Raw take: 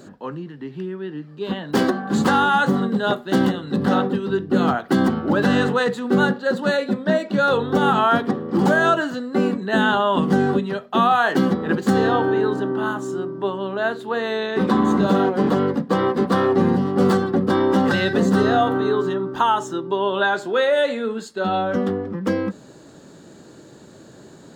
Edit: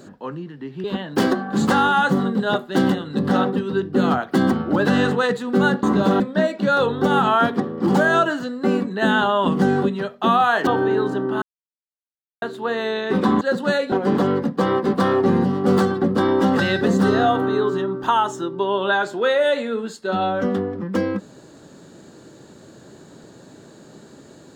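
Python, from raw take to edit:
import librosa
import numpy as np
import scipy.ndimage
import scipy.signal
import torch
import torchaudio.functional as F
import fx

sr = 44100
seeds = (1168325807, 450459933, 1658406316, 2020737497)

y = fx.edit(x, sr, fx.cut(start_s=0.84, length_s=0.57),
    fx.swap(start_s=6.4, length_s=0.51, other_s=14.87, other_length_s=0.37),
    fx.cut(start_s=11.38, length_s=0.75),
    fx.silence(start_s=12.88, length_s=1.0), tone=tone)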